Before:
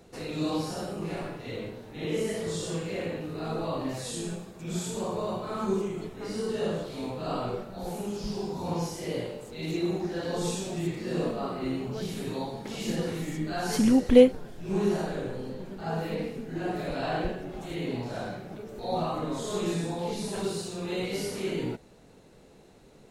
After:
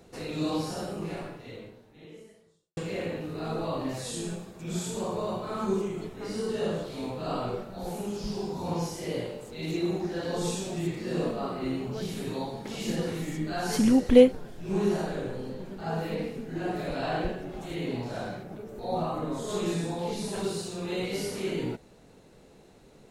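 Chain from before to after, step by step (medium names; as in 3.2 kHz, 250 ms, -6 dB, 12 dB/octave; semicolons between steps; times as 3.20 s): 0.97–2.77 s: fade out quadratic; 18.43–19.49 s: peaking EQ 4 kHz -5 dB 2.3 oct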